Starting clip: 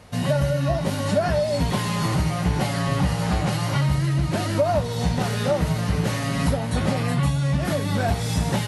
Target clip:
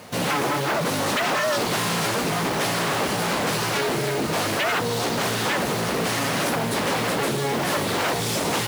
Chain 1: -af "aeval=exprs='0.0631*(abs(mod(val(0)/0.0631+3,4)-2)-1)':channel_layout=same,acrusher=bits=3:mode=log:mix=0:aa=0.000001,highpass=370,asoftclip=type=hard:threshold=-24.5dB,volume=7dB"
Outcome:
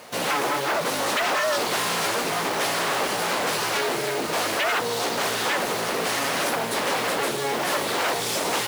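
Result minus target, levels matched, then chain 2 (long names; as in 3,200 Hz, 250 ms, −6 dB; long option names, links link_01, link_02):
250 Hz band −5.0 dB
-af "aeval=exprs='0.0631*(abs(mod(val(0)/0.0631+3,4)-2)-1)':channel_layout=same,acrusher=bits=3:mode=log:mix=0:aa=0.000001,highpass=180,asoftclip=type=hard:threshold=-24.5dB,volume=7dB"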